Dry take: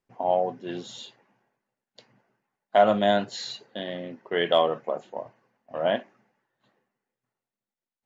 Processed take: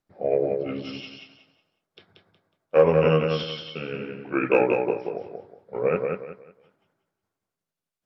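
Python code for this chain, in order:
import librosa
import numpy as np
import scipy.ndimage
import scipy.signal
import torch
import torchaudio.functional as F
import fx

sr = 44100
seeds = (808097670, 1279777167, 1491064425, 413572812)

y = fx.pitch_heads(x, sr, semitones=-4.5)
y = fx.echo_feedback(y, sr, ms=183, feedback_pct=28, wet_db=-4.5)
y = y * 10.0 ** (2.0 / 20.0)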